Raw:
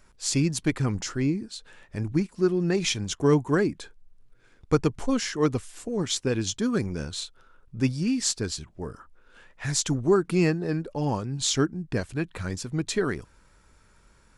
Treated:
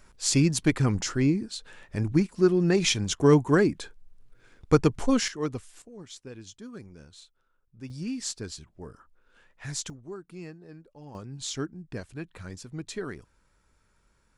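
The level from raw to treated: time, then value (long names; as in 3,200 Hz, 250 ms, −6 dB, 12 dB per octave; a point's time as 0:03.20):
+2 dB
from 0:05.28 −7 dB
from 0:05.82 −17 dB
from 0:07.90 −7.5 dB
from 0:09.90 −19.5 dB
from 0:11.15 −9 dB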